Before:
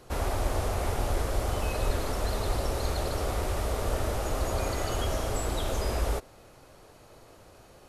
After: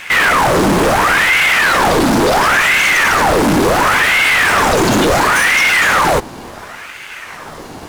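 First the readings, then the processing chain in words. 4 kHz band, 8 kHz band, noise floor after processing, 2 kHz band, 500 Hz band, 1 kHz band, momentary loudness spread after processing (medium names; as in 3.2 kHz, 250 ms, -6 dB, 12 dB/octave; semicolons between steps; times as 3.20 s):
+22.0 dB, +18.0 dB, -32 dBFS, +31.0 dB, +16.5 dB, +22.0 dB, 19 LU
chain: median filter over 3 samples; sine folder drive 14 dB, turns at -13 dBFS; ring modulator with a swept carrier 1.2 kHz, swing 80%, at 0.71 Hz; trim +7.5 dB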